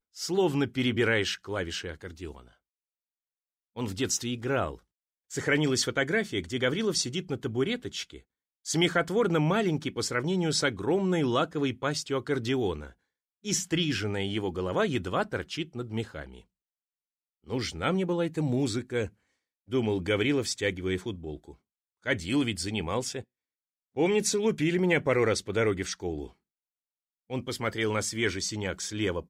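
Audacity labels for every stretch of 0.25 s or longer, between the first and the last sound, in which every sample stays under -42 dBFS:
2.410000	3.760000	silence
4.750000	5.310000	silence
8.190000	8.660000	silence
12.900000	13.450000	silence
16.400000	17.480000	silence
19.080000	19.700000	silence
21.520000	22.060000	silence
23.220000	23.960000	silence
26.280000	27.300000	silence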